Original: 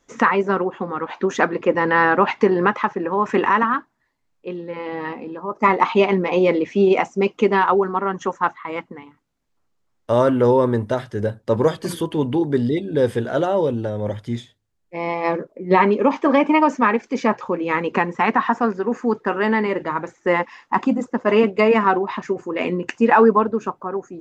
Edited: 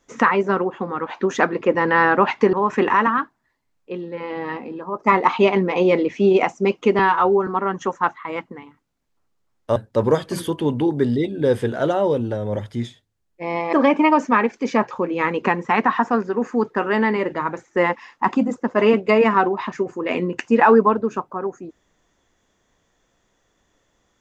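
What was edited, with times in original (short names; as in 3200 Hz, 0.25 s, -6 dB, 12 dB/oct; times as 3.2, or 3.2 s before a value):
2.53–3.09 cut
7.55–7.87 stretch 1.5×
10.16–11.29 cut
15.26–16.23 cut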